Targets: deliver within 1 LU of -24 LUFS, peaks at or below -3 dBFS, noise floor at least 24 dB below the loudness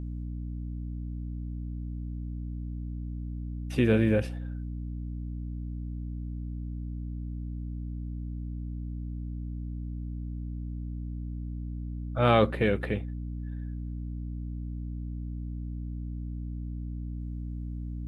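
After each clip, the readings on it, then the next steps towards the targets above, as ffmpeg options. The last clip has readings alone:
hum 60 Hz; harmonics up to 300 Hz; hum level -33 dBFS; loudness -33.5 LUFS; peak -7.0 dBFS; loudness target -24.0 LUFS
-> -af "bandreject=f=60:t=h:w=6,bandreject=f=120:t=h:w=6,bandreject=f=180:t=h:w=6,bandreject=f=240:t=h:w=6,bandreject=f=300:t=h:w=6"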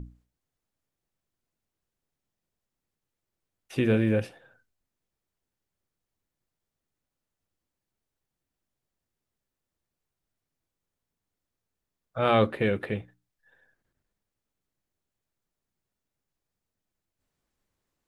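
hum none; loudness -26.5 LUFS; peak -8.5 dBFS; loudness target -24.0 LUFS
-> -af "volume=2.5dB"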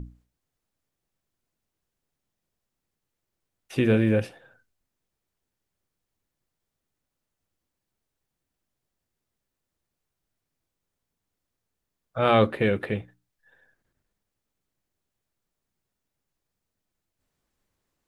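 loudness -24.0 LUFS; peak -6.0 dBFS; noise floor -84 dBFS

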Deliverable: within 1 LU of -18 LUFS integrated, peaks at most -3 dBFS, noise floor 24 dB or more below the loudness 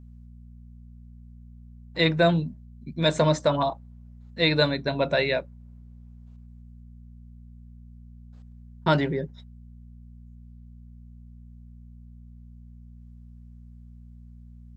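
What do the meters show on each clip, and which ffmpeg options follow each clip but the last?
hum 60 Hz; harmonics up to 240 Hz; hum level -44 dBFS; loudness -24.5 LUFS; peak -6.0 dBFS; loudness target -18.0 LUFS
-> -af "bandreject=f=60:t=h:w=4,bandreject=f=120:t=h:w=4,bandreject=f=180:t=h:w=4,bandreject=f=240:t=h:w=4"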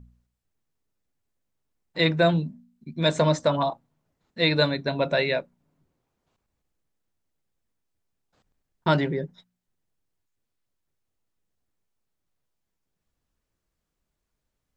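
hum none; loudness -24.0 LUFS; peak -6.0 dBFS; loudness target -18.0 LUFS
-> -af "volume=6dB,alimiter=limit=-3dB:level=0:latency=1"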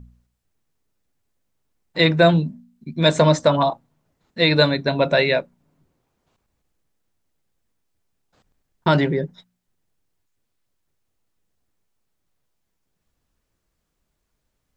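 loudness -18.5 LUFS; peak -3.0 dBFS; noise floor -76 dBFS

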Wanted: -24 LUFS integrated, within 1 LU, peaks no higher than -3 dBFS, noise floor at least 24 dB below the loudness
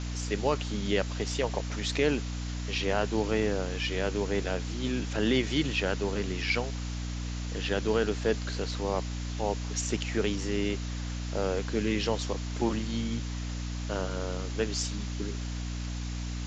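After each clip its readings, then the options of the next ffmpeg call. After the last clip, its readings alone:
hum 60 Hz; harmonics up to 300 Hz; hum level -32 dBFS; noise floor -35 dBFS; noise floor target -55 dBFS; loudness -31.0 LUFS; peak -12.5 dBFS; loudness target -24.0 LUFS
-> -af "bandreject=f=60:t=h:w=4,bandreject=f=120:t=h:w=4,bandreject=f=180:t=h:w=4,bandreject=f=240:t=h:w=4,bandreject=f=300:t=h:w=4"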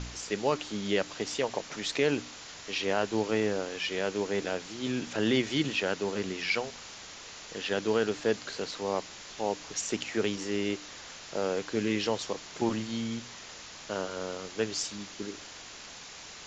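hum none; noise floor -46 dBFS; noise floor target -56 dBFS
-> -af "afftdn=nr=10:nf=-46"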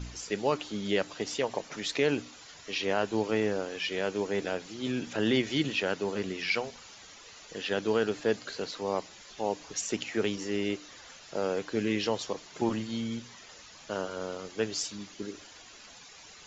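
noise floor -51 dBFS; noise floor target -56 dBFS
-> -af "afftdn=nr=6:nf=-51"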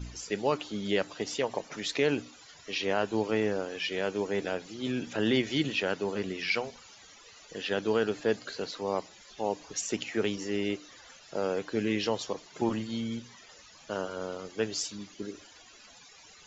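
noise floor -54 dBFS; noise floor target -56 dBFS
-> -af "afftdn=nr=6:nf=-54"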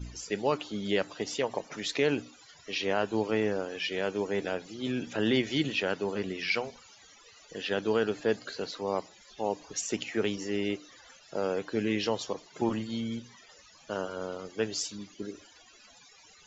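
noise floor -57 dBFS; loudness -32.0 LUFS; peak -13.5 dBFS; loudness target -24.0 LUFS
-> -af "volume=8dB"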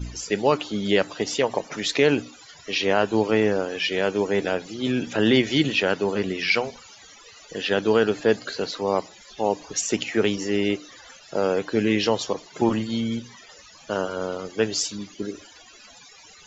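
loudness -24.0 LUFS; peak -5.5 dBFS; noise floor -49 dBFS

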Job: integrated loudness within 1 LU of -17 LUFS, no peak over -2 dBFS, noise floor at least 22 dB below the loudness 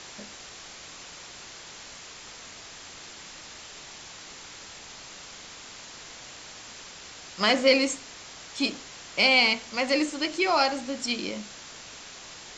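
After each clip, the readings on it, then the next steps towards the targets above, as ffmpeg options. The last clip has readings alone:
noise floor -45 dBFS; noise floor target -47 dBFS; loudness -24.5 LUFS; peak -7.5 dBFS; loudness target -17.0 LUFS
-> -af "afftdn=nr=6:nf=-45"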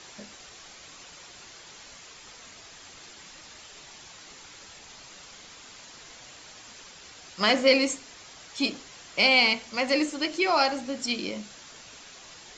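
noise floor -49 dBFS; loudness -24.5 LUFS; peak -7.5 dBFS; loudness target -17.0 LUFS
-> -af "volume=7.5dB,alimiter=limit=-2dB:level=0:latency=1"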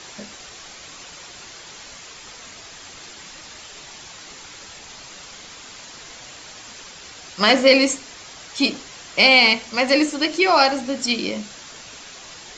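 loudness -17.0 LUFS; peak -2.0 dBFS; noise floor -41 dBFS

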